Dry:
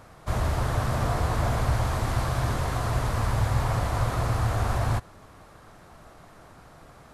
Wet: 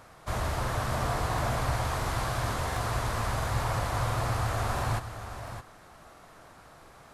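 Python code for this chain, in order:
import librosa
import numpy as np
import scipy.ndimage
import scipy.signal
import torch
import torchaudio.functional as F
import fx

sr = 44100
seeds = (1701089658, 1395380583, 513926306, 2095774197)

p1 = fx.low_shelf(x, sr, hz=460.0, db=-6.5)
p2 = p1 + fx.echo_single(p1, sr, ms=617, db=-10.0, dry=0)
y = fx.buffer_crackle(p2, sr, first_s=0.6, period_s=0.69, block=2048, kind='repeat')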